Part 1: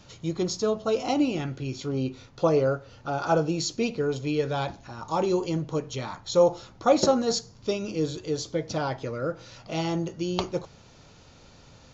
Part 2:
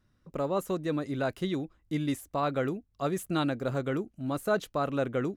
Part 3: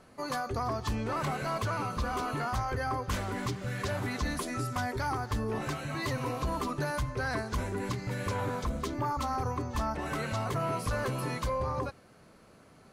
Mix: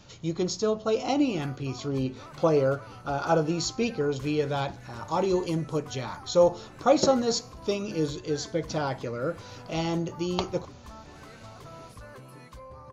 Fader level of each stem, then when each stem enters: -0.5 dB, mute, -14.0 dB; 0.00 s, mute, 1.10 s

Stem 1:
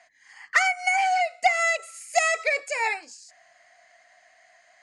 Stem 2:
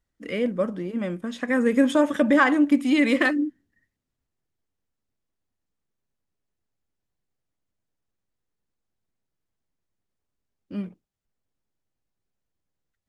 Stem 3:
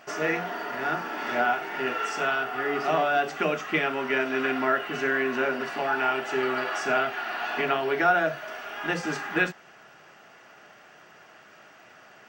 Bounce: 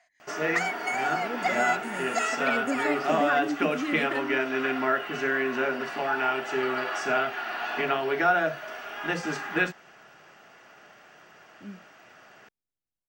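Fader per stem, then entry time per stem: -8.0 dB, -11.5 dB, -1.0 dB; 0.00 s, 0.90 s, 0.20 s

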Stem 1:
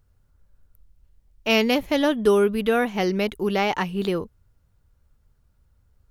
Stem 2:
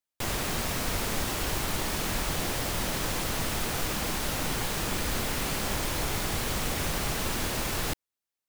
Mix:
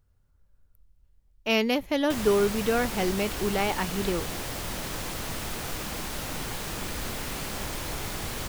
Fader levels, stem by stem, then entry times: -4.5 dB, -3.5 dB; 0.00 s, 1.90 s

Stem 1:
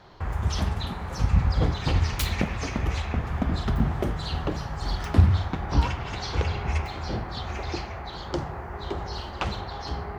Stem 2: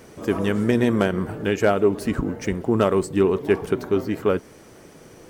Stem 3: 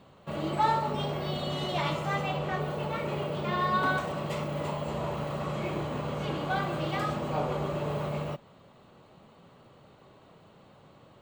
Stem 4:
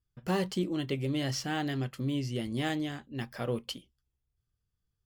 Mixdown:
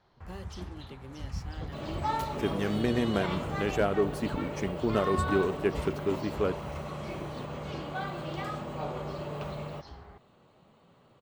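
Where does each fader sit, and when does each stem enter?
-16.0 dB, -8.5 dB, -5.5 dB, -15.0 dB; 0.00 s, 2.15 s, 1.45 s, 0.00 s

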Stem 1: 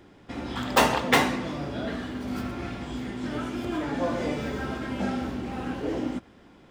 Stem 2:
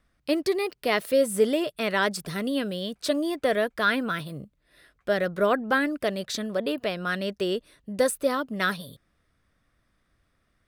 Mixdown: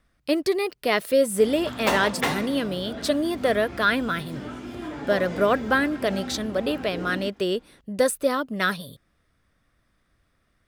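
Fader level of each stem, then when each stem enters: -4.5 dB, +2.0 dB; 1.10 s, 0.00 s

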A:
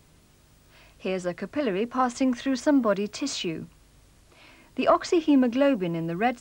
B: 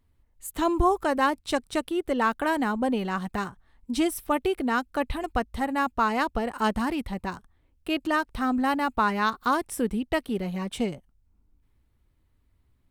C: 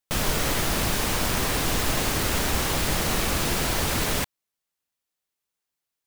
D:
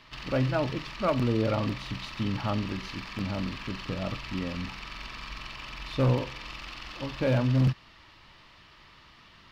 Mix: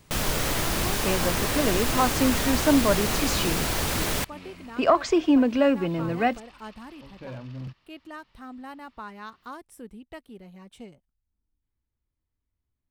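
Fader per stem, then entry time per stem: +1.0 dB, -16.0 dB, -1.5 dB, -14.0 dB; 0.00 s, 0.00 s, 0.00 s, 0.00 s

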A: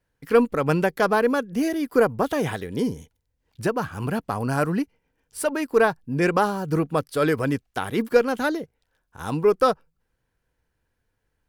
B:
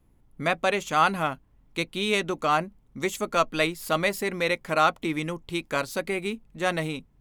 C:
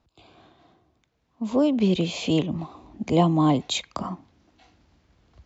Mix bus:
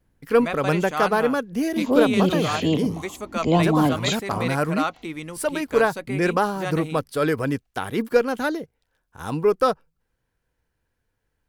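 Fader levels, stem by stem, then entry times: -0.5 dB, -4.5 dB, +0.5 dB; 0.00 s, 0.00 s, 0.35 s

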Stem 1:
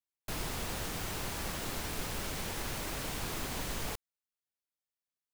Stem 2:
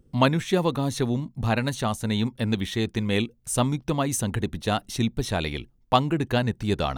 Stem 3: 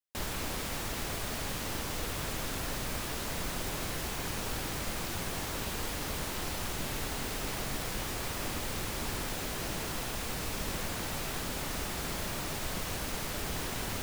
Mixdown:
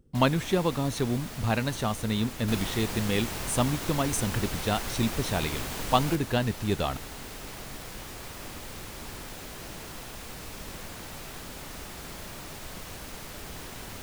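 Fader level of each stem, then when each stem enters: +2.0 dB, -3.0 dB, -5.0 dB; 2.20 s, 0.00 s, 0.00 s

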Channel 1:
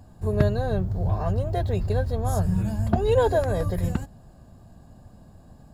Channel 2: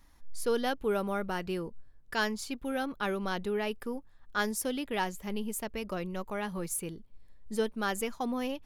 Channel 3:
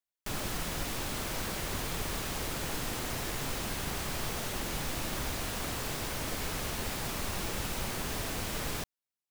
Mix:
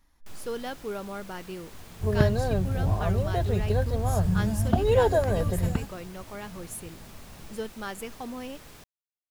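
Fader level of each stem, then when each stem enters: -1.0 dB, -4.5 dB, -13.5 dB; 1.80 s, 0.00 s, 0.00 s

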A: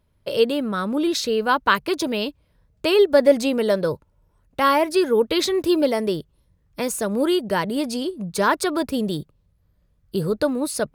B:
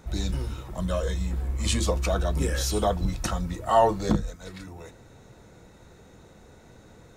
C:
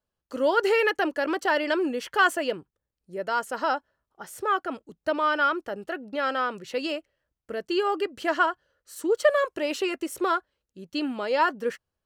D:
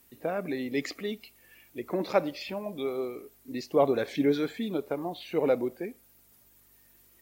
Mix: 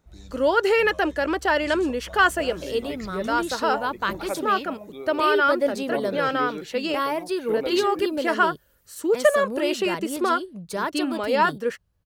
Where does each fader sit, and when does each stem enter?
-8.0 dB, -16.5 dB, +2.5 dB, -6.0 dB; 2.35 s, 0.00 s, 0.00 s, 2.15 s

